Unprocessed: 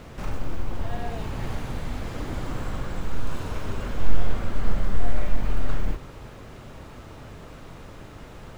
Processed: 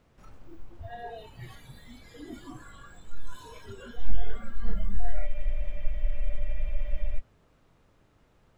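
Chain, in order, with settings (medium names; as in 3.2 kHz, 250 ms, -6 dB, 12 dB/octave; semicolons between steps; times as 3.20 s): spectral noise reduction 18 dB; spectral freeze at 5.30 s, 1.89 s; trim -3 dB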